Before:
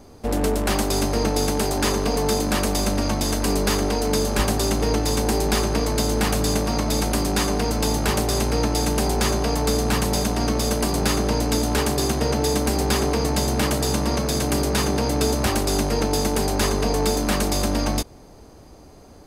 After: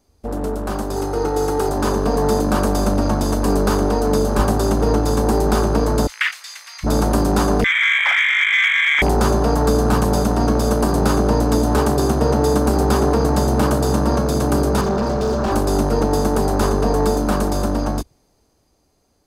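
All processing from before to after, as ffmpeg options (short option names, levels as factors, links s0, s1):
-filter_complex "[0:a]asettb=1/sr,asplit=3[s0][s1][s2];[s0]atrim=end=0.964[s3];[s1]atrim=start=0.96:end=1.69,asetpts=PTS-STARTPTS,afade=t=in:d=0.004:c=qsin,afade=t=out:st=0.726:d=0.004:c=qsin,highpass=f=84:p=1,aecho=1:1:2.4:0.71,atrim=end_sample=32193,volume=3.98,asoftclip=hard,volume=0.251[s4];[s2]atrim=start=1.686[s5];[s3][s4]acrossfade=d=0.004:c1=hsin:c2=qsin[s6];[s6][s5]acrossfade=d=0.004:c1=qsin:c2=hsin,asettb=1/sr,asplit=3[s7][s8][s9];[s7]atrim=end=6.074[s10];[s8]atrim=start=6.07:end=6.84,asetpts=PTS-STARTPTS,afade=t=in:d=0.004:c=qsin,afade=t=out:st=0.766:d=0.004:c=qsin,highpass=f=1200:w=0.5412,highpass=f=1200:w=1.3066,acrossover=split=5800[s11][s12];[s12]acompressor=threshold=0.00794:ratio=4:attack=1:release=60[s13];[s11][s13]amix=inputs=2:normalize=0,equalizer=f=2000:t=o:w=0.49:g=7[s14];[s9]atrim=start=6.836[s15];[s10][s14]acrossfade=d=0.004:c1=hsin:c2=qsin[s16];[s16][s15]acrossfade=d=0.004:c1=qsin:c2=hsin,asettb=1/sr,asplit=3[s17][s18][s19];[s17]atrim=end=7.644[s20];[s18]atrim=start=7.64:end=9.02,asetpts=PTS-STARTPTS,afade=t=in:d=0.004:c=qsin,afade=t=out:st=1.376:d=0.004:c=qsin,highpass=140,lowpass=f=2100:t=q:w=0.5098,lowpass=f=2100:t=q:w=0.6013,lowpass=f=2100:t=q:w=0.9,lowpass=f=2100:t=q:w=2.563,afreqshift=-2500,volume=11.2,asoftclip=hard,volume=0.0891[s21];[s19]atrim=start=9.016[s22];[s20][s21]acrossfade=d=0.004:c1=hsin:c2=qsin[s23];[s23][s22]acrossfade=d=0.004:c1=qsin:c2=hsin,asettb=1/sr,asplit=3[s24][s25][s26];[s24]atrim=end=14.814[s27];[s25]atrim=start=14.81:end=15.52,asetpts=PTS-STARTPTS,afade=t=in:d=0.004:c=qsin,afade=t=out:st=0.706:d=0.004:c=qsin,lowpass=f=6000:w=0.5412,lowpass=f=6000:w=1.3066,aecho=1:1:5.1:0.83,atrim=end_sample=31311,asoftclip=type=hard:threshold=0.0891[s28];[s26]atrim=start=15.516[s29];[s27][s28]acrossfade=d=0.004:c1=hsin:c2=qsin[s30];[s30][s29]acrossfade=d=0.004:c1=qsin:c2=hsin,afwtdn=0.0501,highshelf=f=2400:g=8.5,dynaudnorm=f=200:g=17:m=3.35,volume=0.794"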